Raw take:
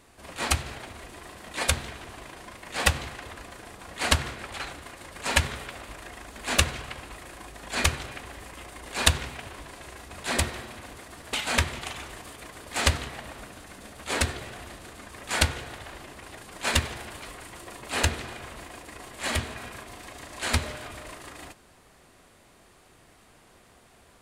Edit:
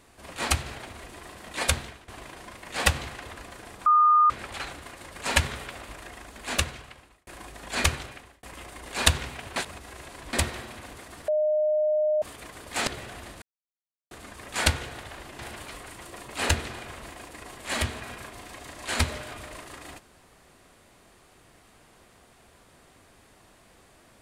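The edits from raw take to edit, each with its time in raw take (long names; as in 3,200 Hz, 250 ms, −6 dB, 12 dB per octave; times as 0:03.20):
0:01.76–0:02.08: fade out, to −15.5 dB
0:03.86–0:04.30: beep over 1,220 Hz −15 dBFS
0:05.71–0:07.27: fade out equal-power
0:07.94–0:08.43: fade out
0:09.56–0:10.33: reverse
0:11.28–0:12.22: beep over 611 Hz −20.5 dBFS
0:12.87–0:14.31: remove
0:14.86: splice in silence 0.69 s
0:16.14–0:16.93: remove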